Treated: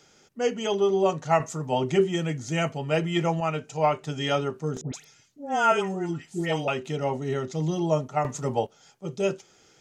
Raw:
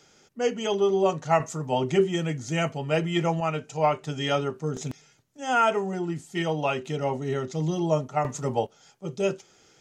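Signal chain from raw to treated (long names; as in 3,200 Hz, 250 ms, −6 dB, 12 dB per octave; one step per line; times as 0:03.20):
0:04.81–0:06.68: all-pass dispersion highs, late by 129 ms, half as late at 1,300 Hz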